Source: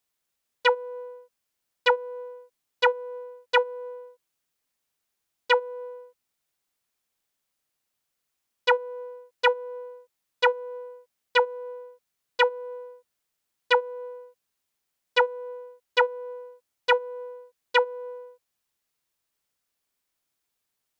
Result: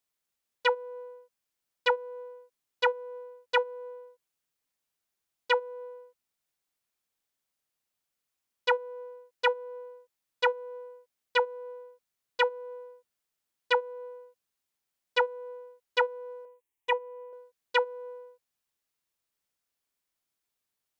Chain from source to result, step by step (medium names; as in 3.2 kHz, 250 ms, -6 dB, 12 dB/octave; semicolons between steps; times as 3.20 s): 16.45–17.33 s: static phaser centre 930 Hz, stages 8; trim -4.5 dB